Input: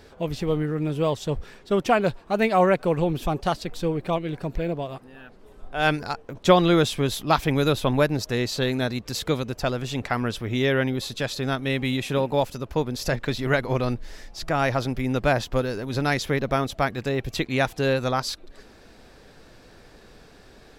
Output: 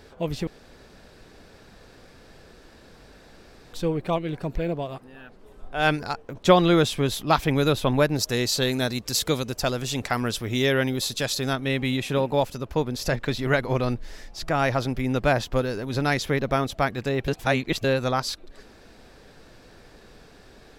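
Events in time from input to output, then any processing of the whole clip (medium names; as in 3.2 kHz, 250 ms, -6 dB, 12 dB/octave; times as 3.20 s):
0.47–3.73 s: room tone
8.16–11.53 s: tone controls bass -1 dB, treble +9 dB
17.28–17.84 s: reverse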